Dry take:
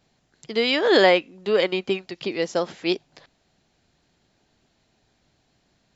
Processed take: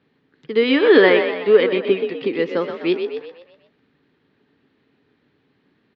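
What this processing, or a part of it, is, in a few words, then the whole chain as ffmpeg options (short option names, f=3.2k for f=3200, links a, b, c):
frequency-shifting delay pedal into a guitar cabinet: -filter_complex "[0:a]asplit=7[a][b][c][d][e][f][g];[b]adelay=124,afreqshift=42,volume=-8dB[h];[c]adelay=248,afreqshift=84,volume=-13.5dB[i];[d]adelay=372,afreqshift=126,volume=-19dB[j];[e]adelay=496,afreqshift=168,volume=-24.5dB[k];[f]adelay=620,afreqshift=210,volume=-30.1dB[l];[g]adelay=744,afreqshift=252,volume=-35.6dB[m];[a][h][i][j][k][l][m]amix=inputs=7:normalize=0,highpass=100,equalizer=f=150:t=q:w=4:g=3,equalizer=f=270:t=q:w=4:g=10,equalizer=f=430:t=q:w=4:g=9,equalizer=f=690:t=q:w=4:g=-9,equalizer=f=1.2k:t=q:w=4:g=4,equalizer=f=1.8k:t=q:w=4:g=5,lowpass=f=3.5k:w=0.5412,lowpass=f=3.5k:w=1.3066"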